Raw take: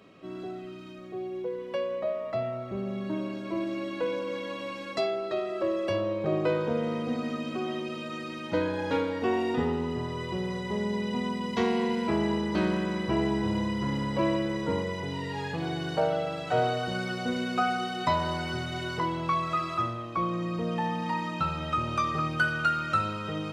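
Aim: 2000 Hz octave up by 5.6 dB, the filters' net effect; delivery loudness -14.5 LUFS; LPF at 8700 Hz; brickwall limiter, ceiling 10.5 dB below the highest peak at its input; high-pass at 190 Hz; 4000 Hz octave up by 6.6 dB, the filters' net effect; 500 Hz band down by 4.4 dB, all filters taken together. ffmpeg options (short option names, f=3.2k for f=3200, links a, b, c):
-af "highpass=190,lowpass=8.7k,equalizer=f=500:t=o:g=-6,equalizer=f=2k:t=o:g=7,equalizer=f=4k:t=o:g=6,volume=17dB,alimiter=limit=-4.5dB:level=0:latency=1"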